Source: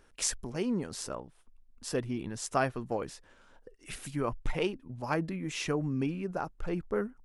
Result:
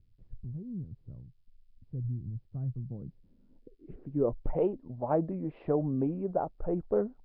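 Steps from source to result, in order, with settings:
low-pass filter sweep 120 Hz → 660 Hz, 0:02.69–0:04.60
Nellymoser 22 kbit/s 11,025 Hz

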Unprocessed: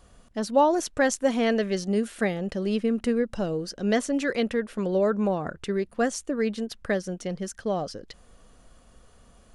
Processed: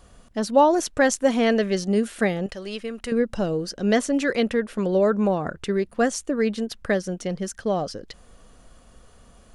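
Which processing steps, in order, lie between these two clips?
0:02.46–0:03.12: parametric band 210 Hz −13.5 dB 2.7 octaves
level +3.5 dB

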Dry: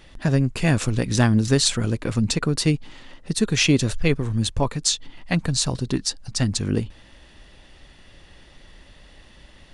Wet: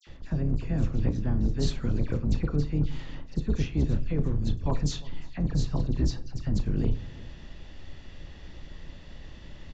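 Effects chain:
sub-octave generator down 2 octaves, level +2 dB
de-essing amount 100%
low-shelf EQ 440 Hz +7 dB
reversed playback
downward compressor 20 to 1, threshold −18 dBFS, peak gain reduction 15 dB
reversed playback
all-pass dispersion lows, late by 70 ms, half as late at 2,400 Hz
hard clipping −13.5 dBFS, distortion −32 dB
double-tracking delay 34 ms −14 dB
slap from a distant wall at 60 metres, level −21 dB
on a send at −12.5 dB: convolution reverb RT60 0.50 s, pre-delay 6 ms
on the sum: downsampling to 16,000 Hz
level −3 dB

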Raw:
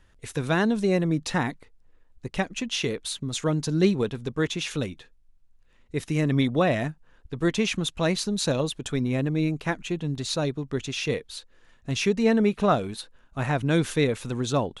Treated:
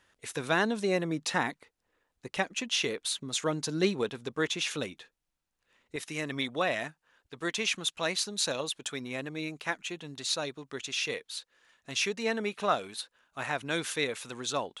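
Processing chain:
high-pass filter 560 Hz 6 dB per octave, from 0:05.96 1,200 Hz

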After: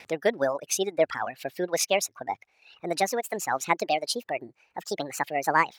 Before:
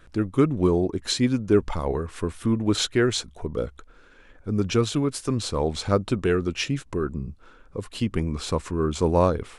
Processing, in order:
gliding playback speed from 150% → 181%
upward compression, threshold −37 dBFS
downward expander −49 dBFS
meter weighting curve A
reverb reduction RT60 1.7 s

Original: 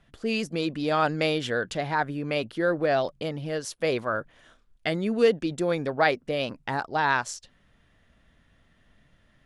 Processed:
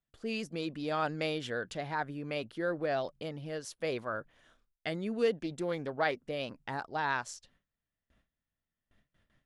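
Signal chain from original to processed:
noise gate with hold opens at −50 dBFS
0:05.42–0:06.16: highs frequency-modulated by the lows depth 0.12 ms
level −8.5 dB

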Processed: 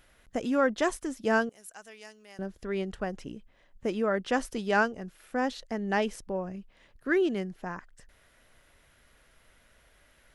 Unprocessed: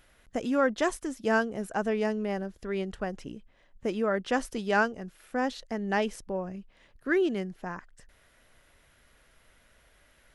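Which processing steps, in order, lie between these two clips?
0:01.49–0:02.39: first-order pre-emphasis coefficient 0.97

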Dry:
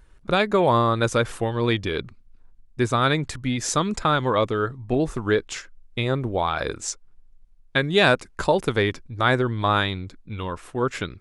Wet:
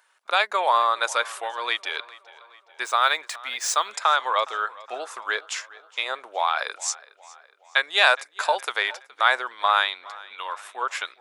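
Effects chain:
0:02.83–0:03.92: running median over 3 samples
high-pass filter 720 Hz 24 dB per octave
tape delay 416 ms, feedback 56%, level −20 dB, low-pass 5,900 Hz
level +2.5 dB

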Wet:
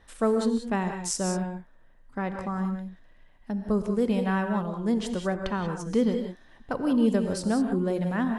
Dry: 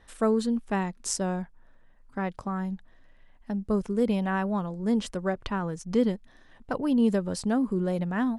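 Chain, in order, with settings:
reverb whose tail is shaped and stops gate 210 ms rising, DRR 5.5 dB

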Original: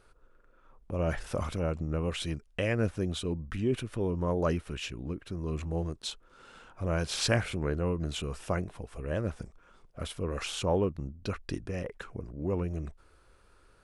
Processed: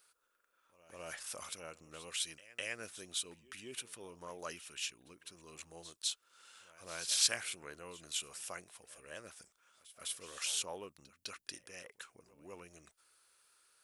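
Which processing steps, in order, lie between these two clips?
first difference
echo ahead of the sound 205 ms −18 dB
level +5 dB

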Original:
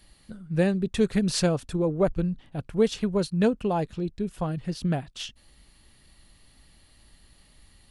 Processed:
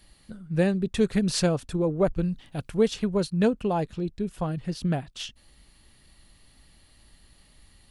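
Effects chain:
0:02.22–0:02.77: high-shelf EQ 2,300 Hz +10 dB

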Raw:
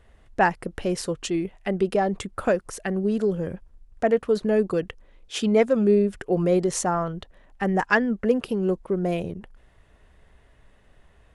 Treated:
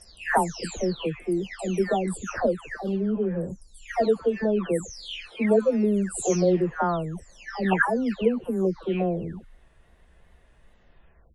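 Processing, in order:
every frequency bin delayed by itself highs early, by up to 611 ms
tape wow and flutter 63 cents

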